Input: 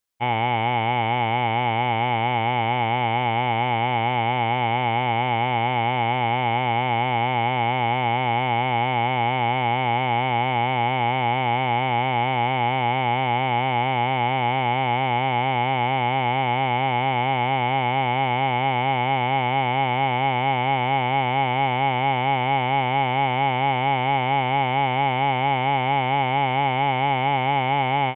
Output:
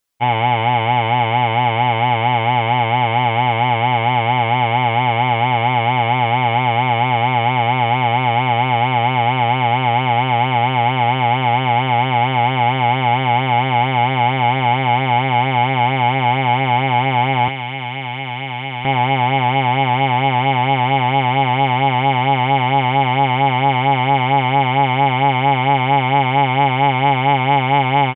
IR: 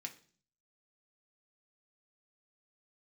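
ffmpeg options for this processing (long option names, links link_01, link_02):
-filter_complex "[0:a]aecho=1:1:7:0.5,asettb=1/sr,asplit=3[link_01][link_02][link_03];[link_01]atrim=end=17.484[link_04];[link_02]atrim=start=17.48:end=18.85,asetpts=PTS-STARTPTS,afade=type=in:duration=0.004:curve=qsin,afade=type=out:start_time=1.366:duration=0.004:curve=qsin,acrossover=split=270|1800[link_05][link_06][link_07];[link_05]acompressor=threshold=-36dB:ratio=4[link_08];[link_06]acompressor=threshold=-34dB:ratio=4[link_09];[link_07]acompressor=threshold=-31dB:ratio=4[link_10];[link_08][link_09][link_10]amix=inputs=3:normalize=0[link_11];[link_03]atrim=start=18.846[link_12];[link_04][link_11]acrossfade=duration=0.004:curve1=hsin:curve2=qsin[link_13];[link_13][link_12]acrossfade=duration=0.004:curve1=qsin:curve2=hsin,volume=5dB"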